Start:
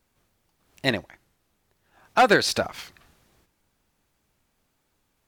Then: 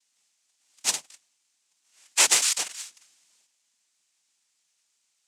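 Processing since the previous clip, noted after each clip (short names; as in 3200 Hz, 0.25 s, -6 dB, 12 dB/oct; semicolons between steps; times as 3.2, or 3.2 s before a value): sample sorter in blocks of 16 samples; noise vocoder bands 4; differentiator; gain +6.5 dB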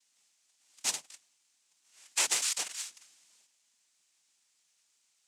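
compressor 2:1, threshold -33 dBFS, peak gain reduction 10.5 dB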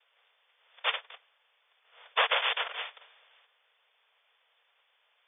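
four-band scrambler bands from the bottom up 2341; brick-wall FIR band-pass 420–3600 Hz; gain +8.5 dB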